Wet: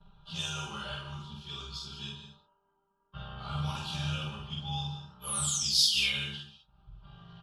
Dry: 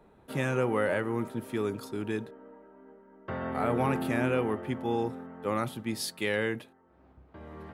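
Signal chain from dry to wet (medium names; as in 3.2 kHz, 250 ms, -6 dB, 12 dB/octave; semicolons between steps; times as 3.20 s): in parallel at -1 dB: upward compressor, threshold -34 dBFS; on the sum: FFT filter 110 Hz 0 dB, 160 Hz -6 dB, 290 Hz -27 dB, 510 Hz -23 dB, 920 Hz -11 dB, 1.4 kHz -6 dB, 2 kHz -25 dB, 3 kHz +11 dB, 5.5 kHz +13 dB, 9.7 kHz -1 dB; painted sound fall, 5.44–6.36 s, 2.1–12 kHz -28 dBFS; level-controlled noise filter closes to 1.7 kHz, open at -24 dBFS; plain phase-vocoder stretch 0.64×; expander -53 dBFS; granular stretch 1.5×, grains 30 ms; doubling 48 ms -2 dB; gated-style reverb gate 230 ms flat, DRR 6.5 dB; trim -2 dB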